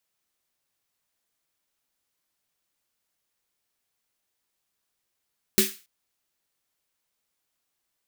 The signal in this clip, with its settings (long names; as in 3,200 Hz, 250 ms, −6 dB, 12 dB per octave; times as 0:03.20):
synth snare length 0.28 s, tones 210 Hz, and 380 Hz, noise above 1,600 Hz, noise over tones 1 dB, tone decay 0.21 s, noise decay 0.34 s